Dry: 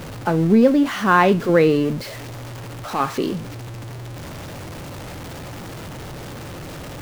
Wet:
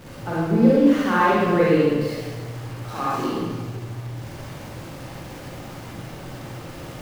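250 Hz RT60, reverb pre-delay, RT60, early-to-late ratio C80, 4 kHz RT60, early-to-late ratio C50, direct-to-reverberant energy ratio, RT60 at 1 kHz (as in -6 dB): 1.7 s, 35 ms, 1.6 s, -1.0 dB, 1.2 s, -4.5 dB, -8.0 dB, 1.5 s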